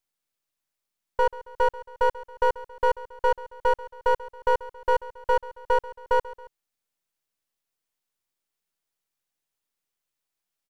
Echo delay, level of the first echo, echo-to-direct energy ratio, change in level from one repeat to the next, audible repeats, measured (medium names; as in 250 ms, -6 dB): 137 ms, -18.0 dB, -17.0 dB, -6.0 dB, 2